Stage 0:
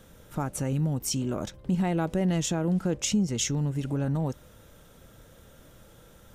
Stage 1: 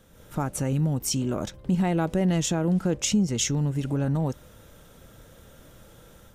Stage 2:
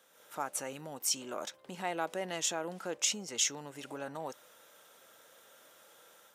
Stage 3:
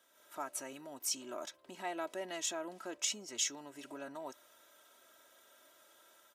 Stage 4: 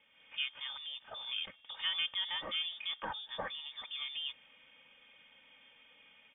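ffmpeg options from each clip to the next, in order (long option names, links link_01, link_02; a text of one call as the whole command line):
ffmpeg -i in.wav -af "dynaudnorm=framelen=110:gausssize=3:maxgain=6.5dB,volume=-4dB" out.wav
ffmpeg -i in.wav -af "highpass=650,volume=-3dB" out.wav
ffmpeg -i in.wav -af "aecho=1:1:3.1:0.66,volume=-6dB" out.wav
ffmpeg -i in.wav -af "lowpass=frequency=3200:width_type=q:width=0.5098,lowpass=frequency=3200:width_type=q:width=0.6013,lowpass=frequency=3200:width_type=q:width=0.9,lowpass=frequency=3200:width_type=q:width=2.563,afreqshift=-3800,volume=4.5dB" out.wav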